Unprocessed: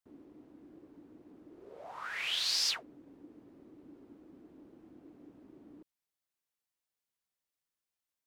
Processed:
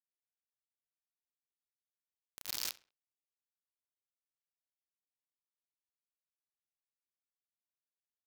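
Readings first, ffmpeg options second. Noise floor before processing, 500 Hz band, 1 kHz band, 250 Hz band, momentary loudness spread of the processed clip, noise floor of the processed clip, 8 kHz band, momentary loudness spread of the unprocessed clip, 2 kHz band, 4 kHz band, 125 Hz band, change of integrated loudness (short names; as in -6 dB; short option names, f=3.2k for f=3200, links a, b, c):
under -85 dBFS, -14.5 dB, -13.5 dB, -20.5 dB, 11 LU, under -85 dBFS, -6.5 dB, 19 LU, -14.5 dB, -13.5 dB, -8.5 dB, -7.5 dB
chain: -filter_complex "[0:a]acrusher=bits=3:mix=0:aa=0.000001,asplit=2[a][b];[b]adelay=66,lowpass=f=4.4k:p=1,volume=-18.5dB,asplit=2[c][d];[d]adelay=66,lowpass=f=4.4k:p=1,volume=0.34,asplit=2[e][f];[f]adelay=66,lowpass=f=4.4k:p=1,volume=0.34[g];[a][c][e][g]amix=inputs=4:normalize=0,volume=-3.5dB"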